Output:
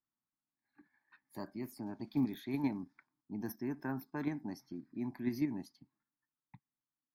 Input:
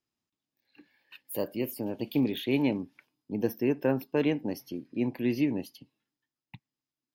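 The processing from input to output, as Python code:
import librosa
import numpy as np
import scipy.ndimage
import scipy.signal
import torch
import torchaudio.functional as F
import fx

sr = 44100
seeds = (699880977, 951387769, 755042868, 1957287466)

p1 = fx.peak_eq(x, sr, hz=78.0, db=-7.5, octaves=1.7)
p2 = fx.fixed_phaser(p1, sr, hz=1200.0, stages=4)
p3 = fx.env_lowpass(p2, sr, base_hz=2000.0, full_db=-30.5)
p4 = fx.level_steps(p3, sr, step_db=15)
p5 = p3 + (p4 * 10.0 ** (2.5 / 20.0))
y = p5 * 10.0 ** (-7.0 / 20.0)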